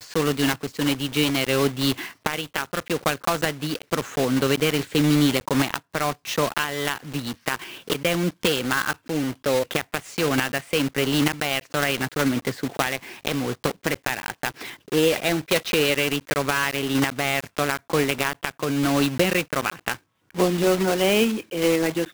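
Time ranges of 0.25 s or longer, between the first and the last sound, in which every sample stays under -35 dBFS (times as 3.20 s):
19.96–20.30 s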